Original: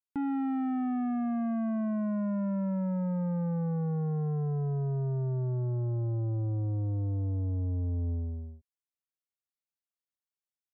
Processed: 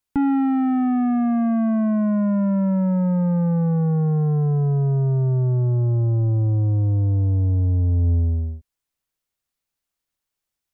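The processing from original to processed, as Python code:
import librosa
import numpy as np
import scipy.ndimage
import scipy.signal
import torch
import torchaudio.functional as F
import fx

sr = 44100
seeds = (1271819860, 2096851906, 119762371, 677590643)

y = fx.low_shelf(x, sr, hz=74.0, db=11.5)
y = fx.rider(y, sr, range_db=10, speed_s=0.5)
y = y * 10.0 ** (9.0 / 20.0)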